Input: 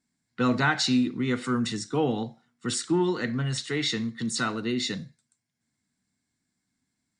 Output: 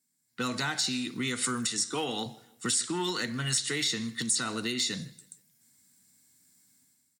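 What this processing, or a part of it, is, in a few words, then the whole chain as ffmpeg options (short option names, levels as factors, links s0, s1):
FM broadcast chain: -filter_complex "[0:a]asettb=1/sr,asplit=3[s0][s1][s2];[s0]atrim=end=1.684[s3];[s1]atrim=start=1.68:end=2.26,asetpts=PTS-STARTPTS,afade=t=in:d=0.004:c=qsin,afade=t=out:st=0.576:d=0.004:c=qsin,highpass=f=270:p=1[s4];[s2]atrim=start=2.256[s5];[s3][s4]acrossfade=d=0.004:c1=hsin:c2=qsin[s6];[s6][s5]acrossfade=d=0.004:c1=qsin:c2=hsin,highpass=74,dynaudnorm=f=130:g=7:m=4.73,acrossover=split=1100|4000[s7][s8][s9];[s7]acompressor=threshold=0.0631:ratio=4[s10];[s8]acompressor=threshold=0.0501:ratio=4[s11];[s9]acompressor=threshold=0.0398:ratio=4[s12];[s10][s11][s12]amix=inputs=3:normalize=0,aemphasis=mode=production:type=50fm,alimiter=limit=0.224:level=0:latency=1:release=234,asoftclip=type=hard:threshold=0.178,lowpass=f=15000:w=0.5412,lowpass=f=15000:w=1.3066,aemphasis=mode=production:type=50fm,highshelf=f=5500:g=-5.5,asplit=2[s13][s14];[s14]adelay=157,lowpass=f=4900:p=1,volume=0.075,asplit=2[s15][s16];[s16]adelay=157,lowpass=f=4900:p=1,volume=0.4,asplit=2[s17][s18];[s18]adelay=157,lowpass=f=4900:p=1,volume=0.4[s19];[s13][s15][s17][s19]amix=inputs=4:normalize=0,volume=0.422"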